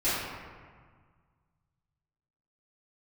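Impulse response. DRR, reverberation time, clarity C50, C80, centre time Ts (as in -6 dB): -16.5 dB, 1.7 s, -2.5 dB, 0.5 dB, 112 ms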